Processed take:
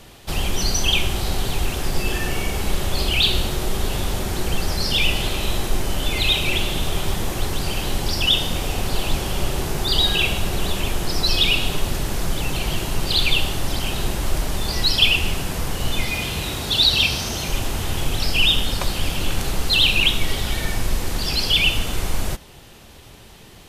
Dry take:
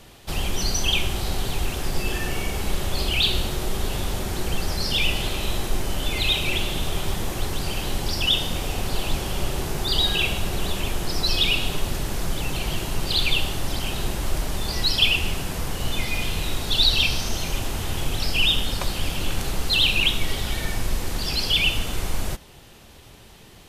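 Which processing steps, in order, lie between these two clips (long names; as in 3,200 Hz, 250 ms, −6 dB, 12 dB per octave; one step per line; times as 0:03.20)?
0:16.11–0:17.49: high-pass filter 56 Hz
level +3 dB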